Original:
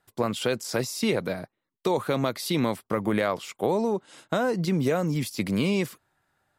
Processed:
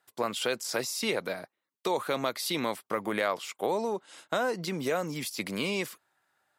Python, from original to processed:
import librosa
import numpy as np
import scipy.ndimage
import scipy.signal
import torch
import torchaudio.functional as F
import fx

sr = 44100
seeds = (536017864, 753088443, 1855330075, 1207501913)

y = fx.highpass(x, sr, hz=630.0, slope=6)